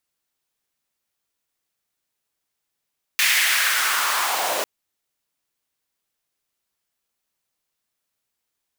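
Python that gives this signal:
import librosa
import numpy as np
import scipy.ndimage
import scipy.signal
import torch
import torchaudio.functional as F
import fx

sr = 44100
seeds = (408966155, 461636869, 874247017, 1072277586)

y = fx.riser_noise(sr, seeds[0], length_s=1.45, colour='pink', kind='highpass', start_hz=2200.0, end_hz=500.0, q=2.4, swell_db=-7, law='linear')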